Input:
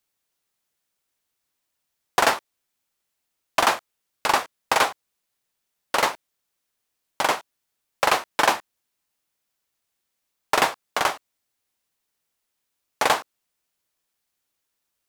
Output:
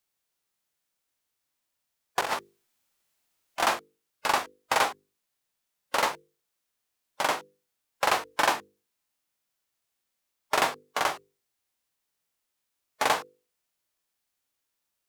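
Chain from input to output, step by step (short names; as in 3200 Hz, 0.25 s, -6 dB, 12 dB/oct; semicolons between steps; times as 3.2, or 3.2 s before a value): 2.2–3.6 negative-ratio compressor -24 dBFS, ratio -0.5; notches 50/100/150/200/250/300/350/400/450/500 Hz; harmonic-percussive split percussive -7 dB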